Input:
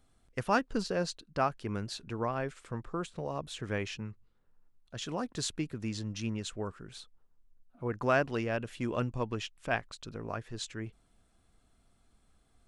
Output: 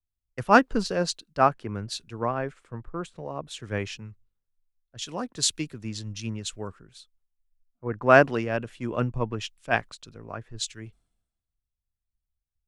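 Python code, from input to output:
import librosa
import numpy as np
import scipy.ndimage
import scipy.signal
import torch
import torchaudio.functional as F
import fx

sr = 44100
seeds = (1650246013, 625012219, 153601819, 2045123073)

y = fx.band_widen(x, sr, depth_pct=100)
y = y * 10.0 ** (3.5 / 20.0)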